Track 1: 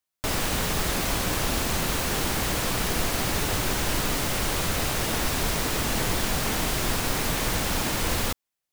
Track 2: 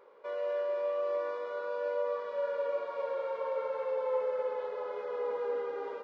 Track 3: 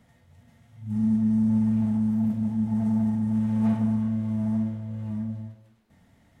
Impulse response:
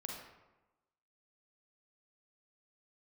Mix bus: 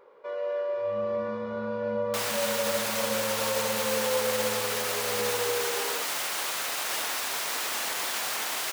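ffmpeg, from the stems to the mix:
-filter_complex "[0:a]adelay=1900,volume=0dB[link_01];[1:a]volume=2.5dB[link_02];[2:a]agate=range=-33dB:threshold=-48dB:ratio=3:detection=peak,lowpass=frequency=3500:width=0.5412,lowpass=frequency=3500:width=1.3066,volume=-3.5dB,asplit=2[link_03][link_04];[link_04]volume=-13.5dB[link_05];[link_01][link_03]amix=inputs=2:normalize=0,highpass=750,alimiter=limit=-21dB:level=0:latency=1,volume=0dB[link_06];[3:a]atrim=start_sample=2205[link_07];[link_05][link_07]afir=irnorm=-1:irlink=0[link_08];[link_02][link_06][link_08]amix=inputs=3:normalize=0,lowshelf=frequency=130:gain=6.5"

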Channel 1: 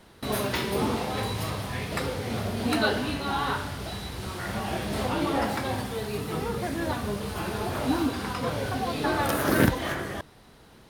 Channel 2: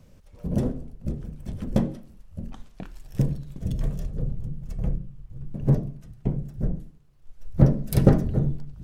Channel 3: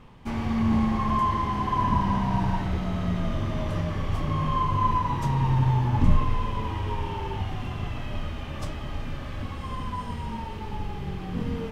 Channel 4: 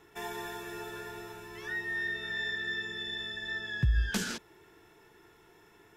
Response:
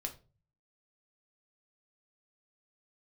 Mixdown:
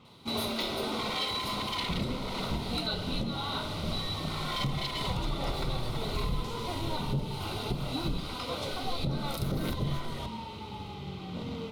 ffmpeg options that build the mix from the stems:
-filter_complex "[0:a]highpass=frequency=250:width=0.5412,highpass=frequency=250:width=1.3066,adelay=50,volume=-6.5dB[link_01];[1:a]adelay=1450,volume=-1.5dB[link_02];[2:a]highpass=100,aeval=exprs='0.0501*(abs(mod(val(0)/0.0501+3,4)-2)-1)':channel_layout=same,volume=-5dB[link_03];[3:a]adelay=2300,volume=-15dB[link_04];[link_01][link_02][link_03][link_04]amix=inputs=4:normalize=0,asuperstop=centerf=1700:order=4:qfactor=4.4,equalizer=frequency=3900:width=2.7:gain=12.5,alimiter=limit=-21.5dB:level=0:latency=1:release=319"

